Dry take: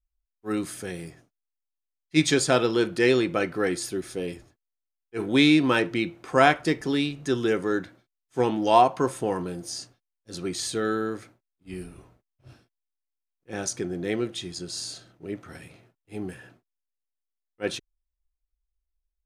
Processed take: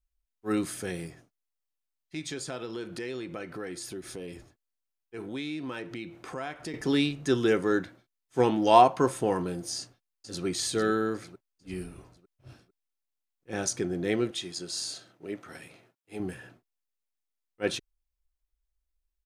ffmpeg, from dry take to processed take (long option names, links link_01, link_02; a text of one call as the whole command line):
ffmpeg -i in.wav -filter_complex "[0:a]asettb=1/sr,asplit=3[link_01][link_02][link_03];[link_01]atrim=end=1.064[link_04];[link_02]atrim=start=1.06:end=6.74,asetpts=PTS-STARTPTS,afade=type=in:duration=0.004:curve=qsin,afade=type=out:start_time=5.676:duration=0.004:curve=qsin,acompressor=threshold=-38dB:ratio=3:attack=3.2:release=140:knee=1:detection=peak[link_05];[link_03]atrim=start=6.736[link_06];[link_04][link_05]acrossfade=duration=0.004:curve1=hsin:curve2=qsin[link_07];[link_07][link_06]acrossfade=duration=0.004:curve1=qsin:curve2=hsin,asplit=2[link_08][link_09];[link_09]afade=type=in:start_time=9.79:duration=0.01,afade=type=out:start_time=10.45:duration=0.01,aecho=0:1:450|900|1350|1800|2250:0.421697|0.189763|0.0853935|0.0384271|0.0172922[link_10];[link_08][link_10]amix=inputs=2:normalize=0,asettb=1/sr,asplit=3[link_11][link_12][link_13];[link_11]atrim=end=14.314[link_14];[link_12]atrim=start=14.31:end=16.2,asetpts=PTS-STARTPTS,afade=type=in:duration=0.004:curve=qsin,afade=type=out:start_time=1.886:duration=0.004:curve=qsin,highpass=frequency=310:poles=1[link_15];[link_13]atrim=start=16.196[link_16];[link_14][link_15]acrossfade=duration=0.004:curve1=hsin:curve2=qsin[link_17];[link_17][link_16]acrossfade=duration=0.004:curve1=qsin:curve2=hsin" out.wav